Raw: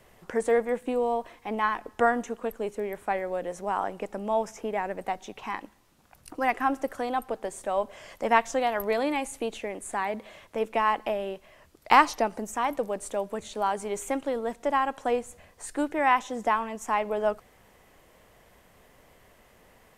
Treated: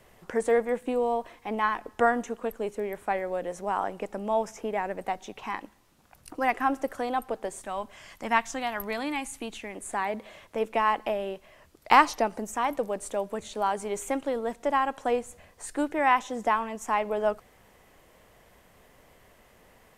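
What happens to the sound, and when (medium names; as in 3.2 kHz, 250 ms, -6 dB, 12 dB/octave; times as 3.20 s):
7.61–9.76 s: peaking EQ 520 Hz -11 dB 0.92 oct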